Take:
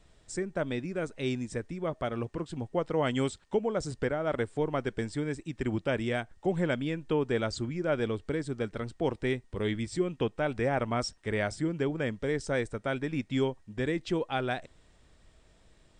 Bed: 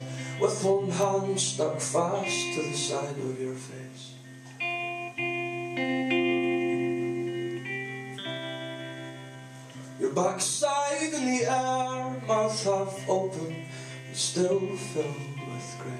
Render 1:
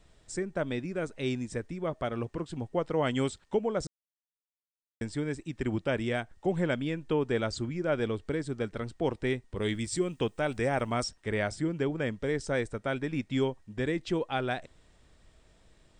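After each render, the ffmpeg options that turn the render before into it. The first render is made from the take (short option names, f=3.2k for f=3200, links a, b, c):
-filter_complex "[0:a]asettb=1/sr,asplit=3[a][b][c];[a]atrim=end=9.624[d];[b]atrim=start=9.62:end=11.04,asetpts=PTS-STARTPTS,afade=t=in:d=0.004:c=qsin,afade=t=out:st=1.416:d=0.004:c=qsin,aemphasis=mode=production:type=50fm[e];[c]atrim=start=11.036[f];[d][e]acrossfade=d=0.004:c1=hsin:c2=qsin[g];[g][f]acrossfade=d=0.004:c1=qsin:c2=hsin,asplit=3[h][i][j];[h]atrim=end=3.87,asetpts=PTS-STARTPTS,afade=t=out:st=3.866:d=0.004:c=hsin[k];[i]atrim=start=3.87:end=5.01,asetpts=PTS-STARTPTS,volume=0[l];[j]atrim=start=5.01,asetpts=PTS-STARTPTS,afade=t=in:d=0.004:c=hsin[m];[k][l][m]concat=n=3:v=0:a=1"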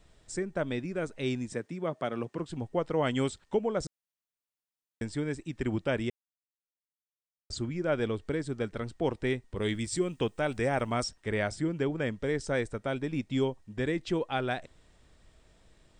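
-filter_complex "[0:a]asettb=1/sr,asplit=3[a][b][c];[a]atrim=end=1.534[d];[b]atrim=start=1.53:end=2.39,asetpts=PTS-STARTPTS,afade=t=in:d=0.004:c=qsin,afade=t=out:st=0.856:d=0.004:c=qsin,highpass=f=130:w=0.5412,highpass=f=130:w=1.3066[e];[c]atrim=start=2.386[f];[d][e]acrossfade=d=0.004:c1=hsin:c2=qsin[g];[g][f]acrossfade=d=0.004:c1=qsin:c2=hsin,asettb=1/sr,asplit=3[h][i][j];[h]atrim=end=12.864[k];[i]atrim=start=12.86:end=13.65,asetpts=PTS-STARTPTS,afade=t=in:d=0.004:c=qsin,afade=t=out:st=0.786:d=0.004:c=qsin,equalizer=f=1.7k:w=1.5:g=-4.5[l];[j]atrim=start=13.646[m];[k][l]acrossfade=d=0.004:c1=hsin:c2=qsin[n];[n][m]acrossfade=d=0.004:c1=qsin:c2=hsin,asplit=3[o][p][q];[o]atrim=end=6.1,asetpts=PTS-STARTPTS,afade=t=out:st=6.096:d=0.004:c=hsin[r];[p]atrim=start=6.1:end=7.5,asetpts=PTS-STARTPTS,volume=0[s];[q]atrim=start=7.5,asetpts=PTS-STARTPTS,afade=t=in:d=0.004:c=hsin[t];[r][s][t]concat=n=3:v=0:a=1"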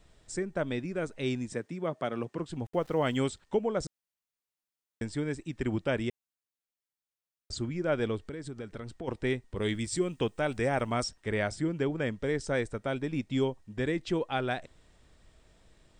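-filter_complex "[0:a]asplit=3[a][b][c];[a]afade=t=out:st=2.64:d=0.02[d];[b]aeval=exprs='val(0)*gte(abs(val(0)),0.00266)':c=same,afade=t=in:st=2.64:d=0.02,afade=t=out:st=3.16:d=0.02[e];[c]afade=t=in:st=3.16:d=0.02[f];[d][e][f]amix=inputs=3:normalize=0,asplit=3[g][h][i];[g]afade=t=out:st=8.24:d=0.02[j];[h]acompressor=threshold=-36dB:ratio=5:attack=3.2:release=140:knee=1:detection=peak,afade=t=in:st=8.24:d=0.02,afade=t=out:st=9.07:d=0.02[k];[i]afade=t=in:st=9.07:d=0.02[l];[j][k][l]amix=inputs=3:normalize=0"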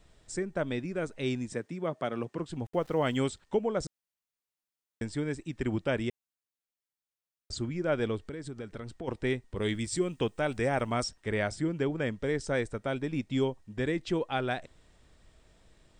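-af anull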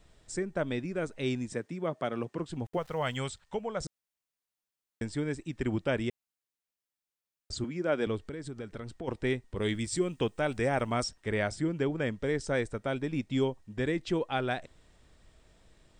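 -filter_complex "[0:a]asettb=1/sr,asplit=3[a][b][c];[a]atrim=end=2.774[d];[b]atrim=start=2.77:end=3.81,asetpts=PTS-STARTPTS,afade=t=in:d=0.004:c=qsin,afade=t=out:st=1.036:d=0.004:c=qsin,equalizer=f=310:w=1.4:g=-13.5[e];[c]atrim=start=3.806[f];[d][e]acrossfade=d=0.004:c1=hsin:c2=qsin[g];[g][f]acrossfade=d=0.004:c1=qsin:c2=hsin,asettb=1/sr,asplit=3[h][i][j];[h]atrim=end=7.644[k];[i]atrim=start=7.64:end=8.07,asetpts=PTS-STARTPTS,afade=t=in:d=0.004:c=qsin,afade=t=out:st=0.426:d=0.004:c=qsin,highpass=f=170:w=0.5412,highpass=f=170:w=1.3066[l];[j]atrim=start=8.066[m];[k][l]acrossfade=d=0.004:c1=hsin:c2=qsin[n];[n][m]acrossfade=d=0.004:c1=qsin:c2=hsin"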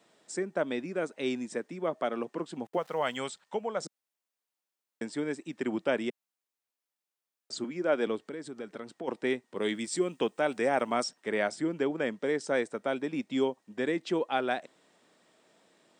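-af "highpass=f=200:w=0.5412,highpass=f=200:w=1.3066,equalizer=f=790:t=o:w=1.6:g=3"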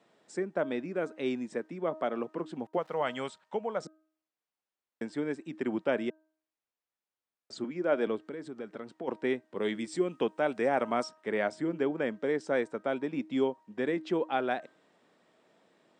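-af "lowpass=f=2.4k:p=1,bandreject=f=314.3:t=h:w=4,bandreject=f=628.6:t=h:w=4,bandreject=f=942.9:t=h:w=4,bandreject=f=1.2572k:t=h:w=4,bandreject=f=1.5715k:t=h:w=4"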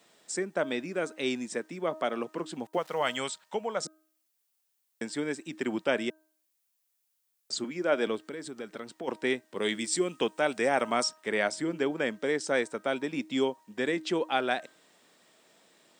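-af "crystalizer=i=5.5:c=0"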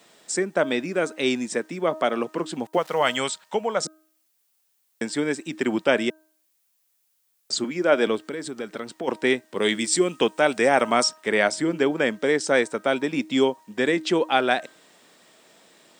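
-af "volume=7.5dB"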